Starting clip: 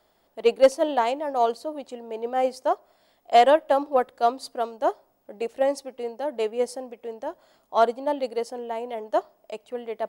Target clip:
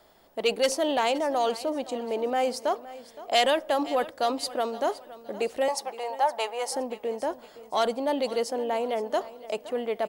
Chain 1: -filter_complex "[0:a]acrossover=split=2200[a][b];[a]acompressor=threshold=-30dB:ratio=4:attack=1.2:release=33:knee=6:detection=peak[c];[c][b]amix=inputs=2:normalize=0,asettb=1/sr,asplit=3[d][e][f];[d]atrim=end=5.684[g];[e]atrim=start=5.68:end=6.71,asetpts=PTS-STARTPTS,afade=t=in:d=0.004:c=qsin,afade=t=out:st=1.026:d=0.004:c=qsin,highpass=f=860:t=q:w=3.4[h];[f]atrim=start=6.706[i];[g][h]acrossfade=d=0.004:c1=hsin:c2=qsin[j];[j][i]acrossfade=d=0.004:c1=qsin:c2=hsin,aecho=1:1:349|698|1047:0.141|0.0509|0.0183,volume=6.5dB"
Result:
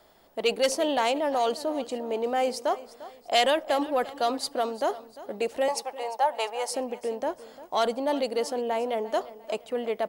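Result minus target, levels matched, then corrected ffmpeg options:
echo 0.168 s early
-filter_complex "[0:a]acrossover=split=2200[a][b];[a]acompressor=threshold=-30dB:ratio=4:attack=1.2:release=33:knee=6:detection=peak[c];[c][b]amix=inputs=2:normalize=0,asettb=1/sr,asplit=3[d][e][f];[d]atrim=end=5.684[g];[e]atrim=start=5.68:end=6.71,asetpts=PTS-STARTPTS,afade=t=in:d=0.004:c=qsin,afade=t=out:st=1.026:d=0.004:c=qsin,highpass=f=860:t=q:w=3.4[h];[f]atrim=start=6.706[i];[g][h]acrossfade=d=0.004:c1=hsin:c2=qsin[j];[j][i]acrossfade=d=0.004:c1=qsin:c2=hsin,aecho=1:1:517|1034|1551:0.141|0.0509|0.0183,volume=6.5dB"

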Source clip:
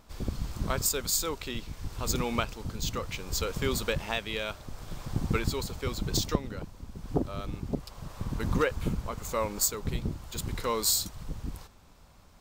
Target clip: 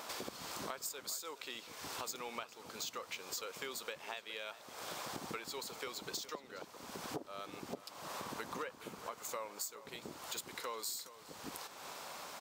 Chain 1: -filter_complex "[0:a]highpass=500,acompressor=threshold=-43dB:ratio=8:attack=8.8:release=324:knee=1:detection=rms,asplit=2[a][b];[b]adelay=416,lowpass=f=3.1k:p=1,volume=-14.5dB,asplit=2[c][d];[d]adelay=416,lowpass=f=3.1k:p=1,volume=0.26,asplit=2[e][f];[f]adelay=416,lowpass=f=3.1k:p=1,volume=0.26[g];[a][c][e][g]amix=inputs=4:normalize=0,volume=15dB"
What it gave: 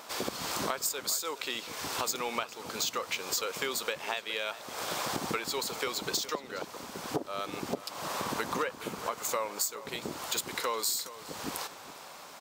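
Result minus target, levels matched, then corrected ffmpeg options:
compressor: peak gain reduction -10.5 dB
-filter_complex "[0:a]highpass=500,acompressor=threshold=-55dB:ratio=8:attack=8.8:release=324:knee=1:detection=rms,asplit=2[a][b];[b]adelay=416,lowpass=f=3.1k:p=1,volume=-14.5dB,asplit=2[c][d];[d]adelay=416,lowpass=f=3.1k:p=1,volume=0.26,asplit=2[e][f];[f]adelay=416,lowpass=f=3.1k:p=1,volume=0.26[g];[a][c][e][g]amix=inputs=4:normalize=0,volume=15dB"

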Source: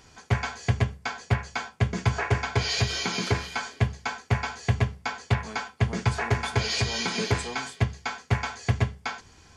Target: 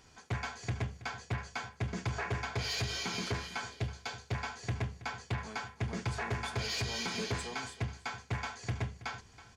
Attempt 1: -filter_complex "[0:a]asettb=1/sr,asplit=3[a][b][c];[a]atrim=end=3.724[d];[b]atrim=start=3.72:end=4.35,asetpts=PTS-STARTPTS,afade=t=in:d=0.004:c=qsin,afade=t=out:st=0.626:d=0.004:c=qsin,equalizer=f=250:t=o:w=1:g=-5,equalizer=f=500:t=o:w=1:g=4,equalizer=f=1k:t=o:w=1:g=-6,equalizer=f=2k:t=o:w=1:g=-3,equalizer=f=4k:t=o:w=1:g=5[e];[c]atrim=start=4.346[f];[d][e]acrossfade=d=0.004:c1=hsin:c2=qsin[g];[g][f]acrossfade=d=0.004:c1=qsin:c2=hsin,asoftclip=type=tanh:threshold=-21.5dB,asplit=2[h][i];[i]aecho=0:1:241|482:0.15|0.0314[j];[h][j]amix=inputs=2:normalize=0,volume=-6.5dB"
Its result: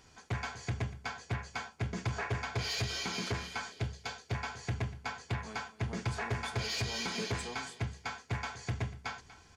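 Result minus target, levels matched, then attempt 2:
echo 84 ms early
-filter_complex "[0:a]asettb=1/sr,asplit=3[a][b][c];[a]atrim=end=3.724[d];[b]atrim=start=3.72:end=4.35,asetpts=PTS-STARTPTS,afade=t=in:d=0.004:c=qsin,afade=t=out:st=0.626:d=0.004:c=qsin,equalizer=f=250:t=o:w=1:g=-5,equalizer=f=500:t=o:w=1:g=4,equalizer=f=1k:t=o:w=1:g=-6,equalizer=f=2k:t=o:w=1:g=-3,equalizer=f=4k:t=o:w=1:g=5[e];[c]atrim=start=4.346[f];[d][e]acrossfade=d=0.004:c1=hsin:c2=qsin[g];[g][f]acrossfade=d=0.004:c1=qsin:c2=hsin,asoftclip=type=tanh:threshold=-21.5dB,asplit=2[h][i];[i]aecho=0:1:325|650:0.15|0.0314[j];[h][j]amix=inputs=2:normalize=0,volume=-6.5dB"

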